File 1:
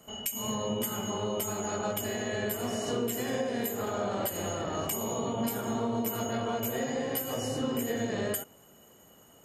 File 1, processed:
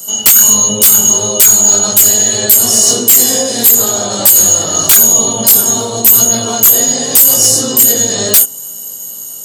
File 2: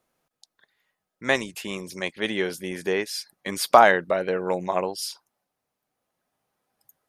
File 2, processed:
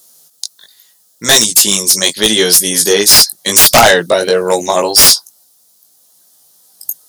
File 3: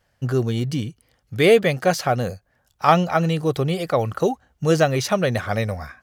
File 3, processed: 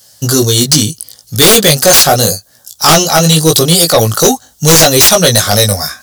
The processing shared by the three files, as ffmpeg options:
-af "highpass=90,flanger=delay=17.5:depth=2.4:speed=0.79,aexciter=amount=11.8:drive=4.8:freq=3600,aeval=exprs='1.58*sin(PI/2*7.08*val(0)/1.58)':c=same,volume=0.562"

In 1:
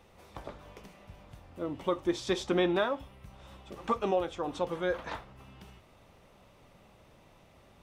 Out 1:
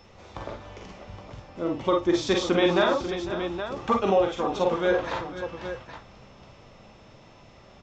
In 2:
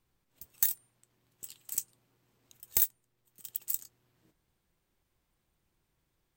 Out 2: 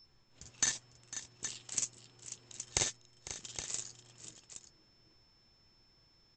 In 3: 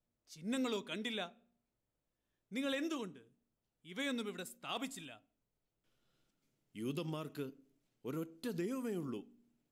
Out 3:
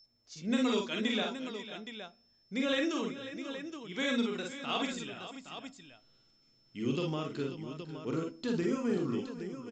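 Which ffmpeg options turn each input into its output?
-af "aresample=16000,aresample=44100,aeval=exprs='val(0)+0.000631*sin(2*PI*5300*n/s)':c=same,aecho=1:1:42|51|59|501|539|819:0.531|0.531|0.299|0.168|0.251|0.335,volume=1.88"

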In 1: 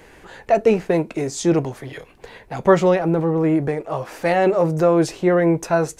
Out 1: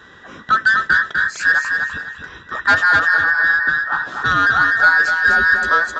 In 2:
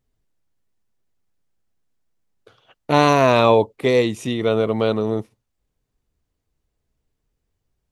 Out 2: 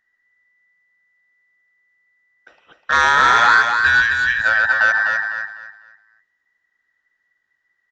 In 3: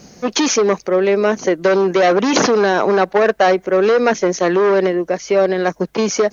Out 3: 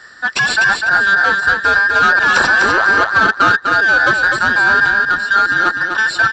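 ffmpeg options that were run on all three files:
-af "afftfilt=real='real(if(between(b,1,1012),(2*floor((b-1)/92)+1)*92-b,b),0)':imag='imag(if(between(b,1,1012),(2*floor((b-1)/92)+1)*92-b,b),0)*if(between(b,1,1012),-1,1)':win_size=2048:overlap=0.75,highpass=42,highshelf=f=5500:g=-9.5,aresample=16000,asoftclip=type=tanh:threshold=0.316,aresample=44100,aecho=1:1:250|500|750|1000:0.562|0.157|0.0441|0.0123,volume=1.5"

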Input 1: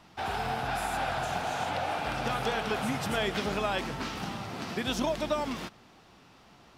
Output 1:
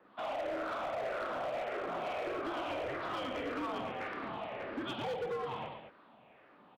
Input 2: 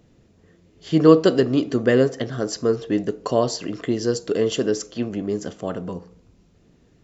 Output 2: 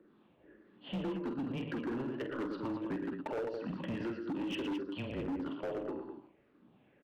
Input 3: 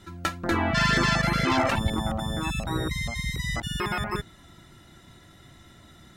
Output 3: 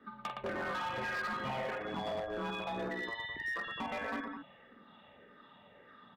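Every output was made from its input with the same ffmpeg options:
-filter_complex "[0:a]afftfilt=real='re*pow(10,11/40*sin(2*PI*(0.55*log(max(b,1)*sr/1024/100)/log(2)-(-1.7)*(pts-256)/sr)))':imag='im*pow(10,11/40*sin(2*PI*(0.55*log(max(b,1)*sr/1024/100)/log(2)-(-1.7)*(pts-256)/sr)))':win_size=1024:overlap=0.75,highpass=f=380:t=q:w=0.5412,highpass=f=380:t=q:w=1.307,lowpass=f=3500:t=q:w=0.5176,lowpass=f=3500:t=q:w=0.7071,lowpass=f=3500:t=q:w=1.932,afreqshift=-130,acompressor=threshold=0.0355:ratio=16,acrossover=split=750[s0][s1];[s0]aeval=exprs='val(0)*(1-0.5/2+0.5/2*cos(2*PI*2.1*n/s))':c=same[s2];[s1]aeval=exprs='val(0)*(1-0.5/2-0.5/2*cos(2*PI*2.1*n/s))':c=same[s3];[s2][s3]amix=inputs=2:normalize=0,highshelf=f=2100:g=-10,aecho=1:1:47|116|211:0.422|0.447|0.376,volume=44.7,asoftclip=hard,volume=0.0224"

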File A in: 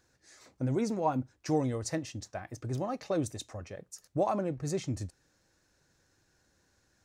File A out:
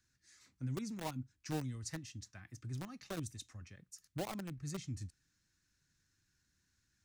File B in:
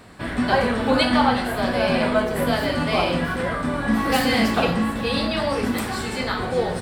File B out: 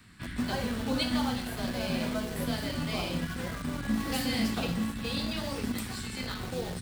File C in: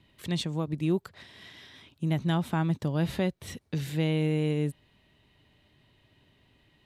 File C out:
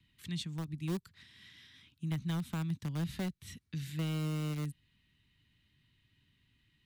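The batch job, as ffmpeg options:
-filter_complex "[0:a]acrossover=split=290|1200|4500[s0][s1][s2][s3];[s1]aeval=exprs='val(0)*gte(abs(val(0)),0.0398)':c=same[s4];[s0][s4][s2][s3]amix=inputs=4:normalize=0,acrossover=split=300|3000[s5][s6][s7];[s6]acompressor=threshold=0.00501:ratio=1.5[s8];[s5][s8][s7]amix=inputs=3:normalize=0,volume=0.473"

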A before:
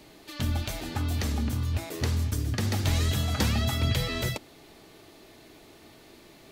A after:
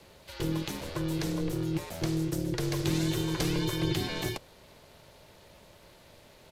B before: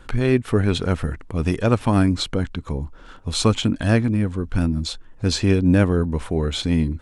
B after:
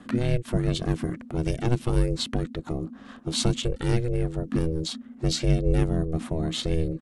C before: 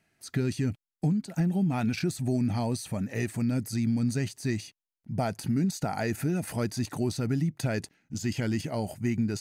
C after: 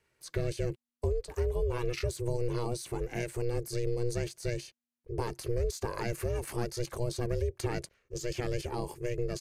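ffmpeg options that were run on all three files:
-filter_complex "[0:a]aresample=32000,aresample=44100,aeval=exprs='val(0)*sin(2*PI*240*n/s)':c=same,acrossover=split=320|3000[s0][s1][s2];[s1]acompressor=threshold=0.0224:ratio=6[s3];[s0][s3][s2]amix=inputs=3:normalize=0"

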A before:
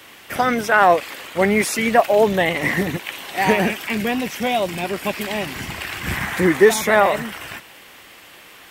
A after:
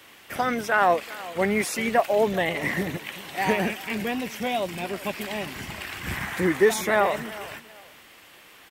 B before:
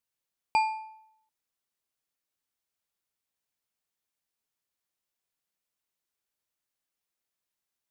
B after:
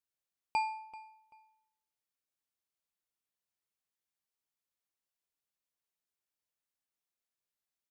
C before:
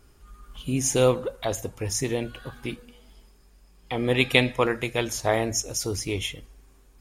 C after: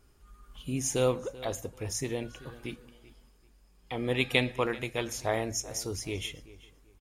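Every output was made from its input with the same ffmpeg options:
-filter_complex "[0:a]asplit=2[s0][s1];[s1]adelay=386,lowpass=f=3800:p=1,volume=0.126,asplit=2[s2][s3];[s3]adelay=386,lowpass=f=3800:p=1,volume=0.27[s4];[s0][s2][s4]amix=inputs=3:normalize=0,volume=0.473"

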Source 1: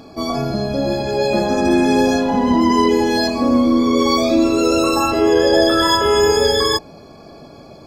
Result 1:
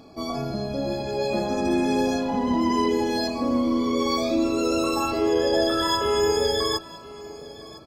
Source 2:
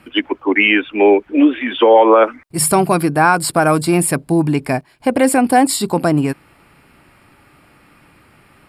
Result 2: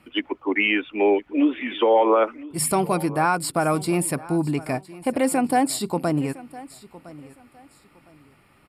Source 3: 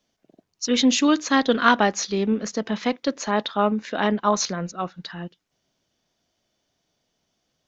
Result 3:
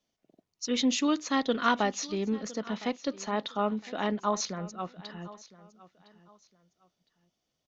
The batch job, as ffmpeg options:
-filter_complex "[0:a]bandreject=f=1600:w=11,asplit=2[s0][s1];[s1]aecho=0:1:1010|2020:0.112|0.0292[s2];[s0][s2]amix=inputs=2:normalize=0,volume=0.398"

